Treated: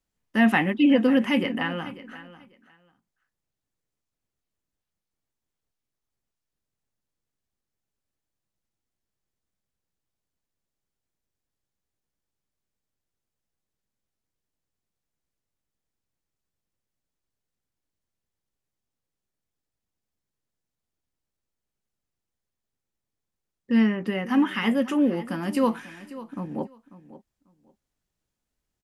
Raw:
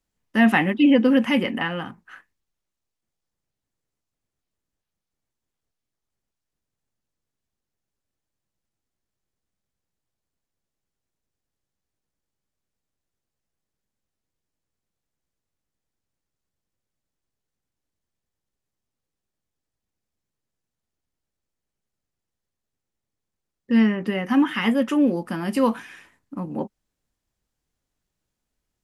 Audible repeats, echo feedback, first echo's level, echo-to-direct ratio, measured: 2, 19%, -16.5 dB, -16.5 dB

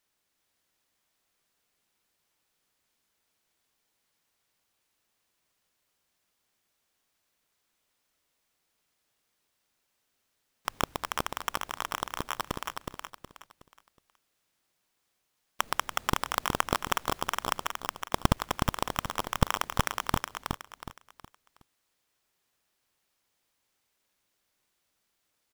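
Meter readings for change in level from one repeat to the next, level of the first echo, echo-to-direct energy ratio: -9.5 dB, -4.0 dB, -3.5 dB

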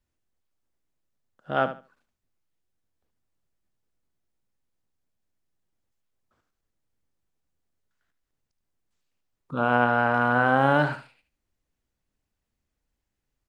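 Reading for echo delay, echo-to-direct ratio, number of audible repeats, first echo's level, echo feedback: 74 ms, -12.0 dB, 2, -12.0 dB, 20%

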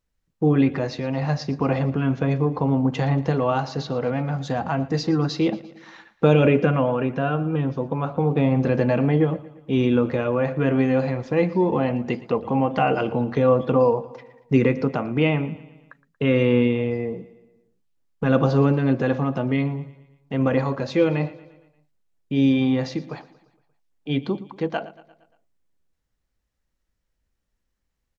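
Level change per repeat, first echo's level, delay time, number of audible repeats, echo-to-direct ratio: -5.5 dB, -18.5 dB, 0.116 s, 4, -17.0 dB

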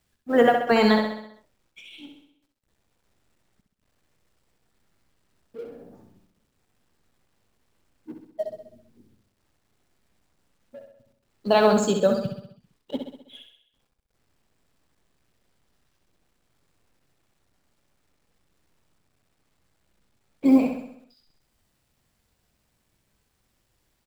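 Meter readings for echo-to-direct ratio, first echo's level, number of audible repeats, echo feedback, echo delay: -4.5 dB, -6.0 dB, 6, 54%, 65 ms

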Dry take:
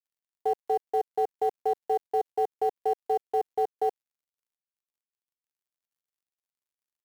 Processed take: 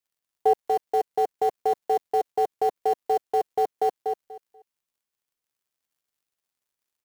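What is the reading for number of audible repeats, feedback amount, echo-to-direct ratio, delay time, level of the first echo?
3, 20%, -6.5 dB, 0.242 s, -6.5 dB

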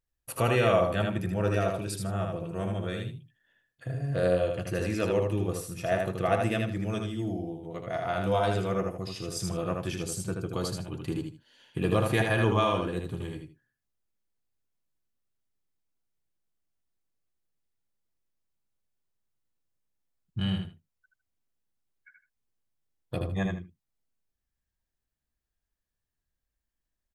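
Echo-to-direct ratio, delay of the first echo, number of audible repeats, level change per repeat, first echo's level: -4.0 dB, 78 ms, 2, -13.0 dB, -4.0 dB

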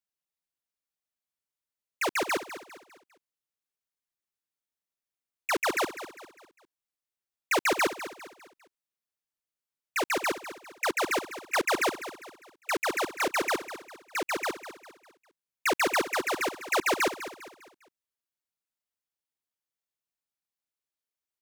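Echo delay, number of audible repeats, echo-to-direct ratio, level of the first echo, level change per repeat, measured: 0.201 s, 3, -12.0 dB, -12.5 dB, -8.0 dB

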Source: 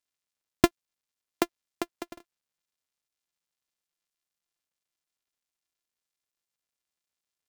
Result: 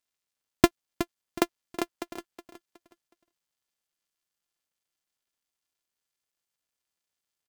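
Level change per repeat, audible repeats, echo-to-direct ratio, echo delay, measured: -10.0 dB, 3, -10.5 dB, 0.368 s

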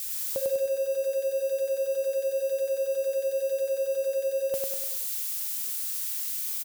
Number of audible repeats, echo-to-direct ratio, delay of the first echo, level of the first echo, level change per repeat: 5, -2.0 dB, 99 ms, -3.0 dB, -6.0 dB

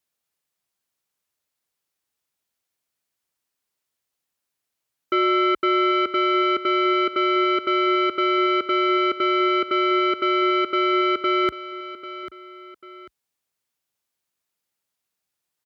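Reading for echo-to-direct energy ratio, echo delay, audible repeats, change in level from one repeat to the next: -13.5 dB, 0.793 s, 2, -9.0 dB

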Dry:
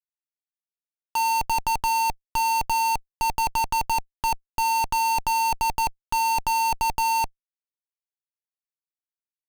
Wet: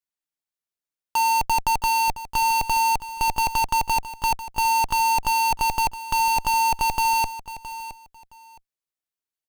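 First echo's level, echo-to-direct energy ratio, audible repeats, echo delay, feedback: -14.0 dB, -14.0 dB, 2, 0.667 s, 20%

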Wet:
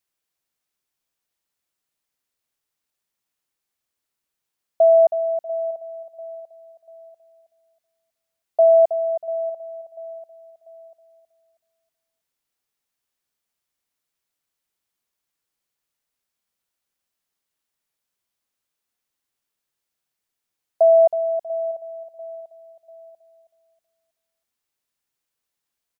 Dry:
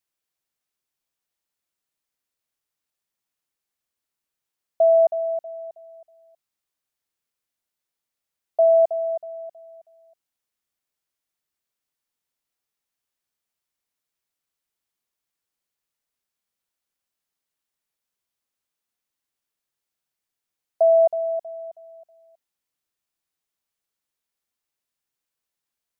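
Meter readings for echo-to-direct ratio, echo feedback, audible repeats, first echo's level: -16.5 dB, 37%, 3, -17.0 dB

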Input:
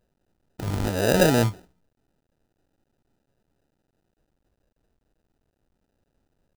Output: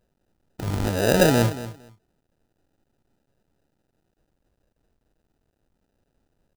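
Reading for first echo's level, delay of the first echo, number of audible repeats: -14.5 dB, 0.23 s, 2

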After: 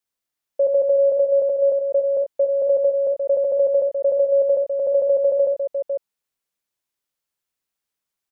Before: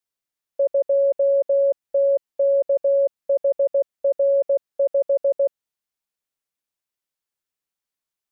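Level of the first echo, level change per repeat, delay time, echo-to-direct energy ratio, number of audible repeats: -7.0 dB, no steady repeat, 69 ms, -3.0 dB, 2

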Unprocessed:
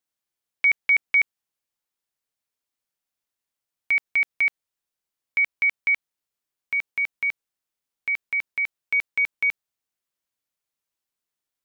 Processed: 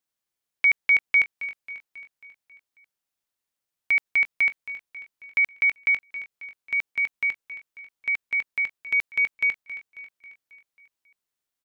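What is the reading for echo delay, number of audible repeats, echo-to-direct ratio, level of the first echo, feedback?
0.271 s, 5, -12.5 dB, -14.0 dB, 55%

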